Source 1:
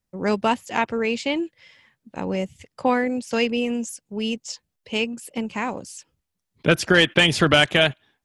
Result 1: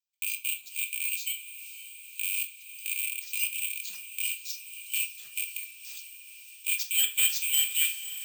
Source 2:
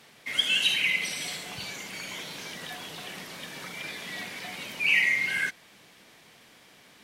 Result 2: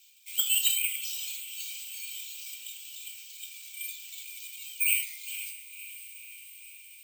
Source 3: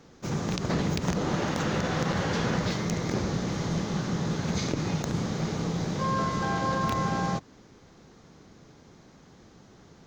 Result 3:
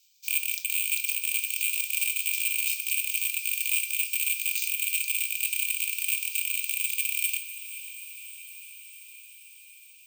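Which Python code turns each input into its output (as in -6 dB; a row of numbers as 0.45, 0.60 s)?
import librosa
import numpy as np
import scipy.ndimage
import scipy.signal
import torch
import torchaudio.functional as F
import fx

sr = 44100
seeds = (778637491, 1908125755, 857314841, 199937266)

y = fx.rattle_buzz(x, sr, strikes_db=-28.0, level_db=-11.0)
y = scipy.signal.sosfilt(scipy.signal.butter(4, 5600.0, 'lowpass', fs=sr, output='sos'), y)
y = fx.notch(y, sr, hz=3300.0, q=11.0)
y = fx.dereverb_blind(y, sr, rt60_s=1.0)
y = scipy.signal.sosfilt(scipy.signal.cheby1(6, 9, 2300.0, 'highpass', fs=sr, output='sos'), y)
y = fx.high_shelf(y, sr, hz=4400.0, db=9.0)
y = 10.0 ** (-19.5 / 20.0) * np.tanh(y / 10.0 ** (-19.5 / 20.0))
y = (np.kron(y[::4], np.eye(4)[0]) * 4)[:len(y)]
y = fx.echo_diffused(y, sr, ms=526, feedback_pct=70, wet_db=-13.0)
y = fx.room_shoebox(y, sr, seeds[0], volume_m3=430.0, walls='furnished', distance_m=1.3)
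y = librosa.util.normalize(y) * 10.0 ** (-9 / 20.0)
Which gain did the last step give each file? -5.0, -2.5, 0.0 dB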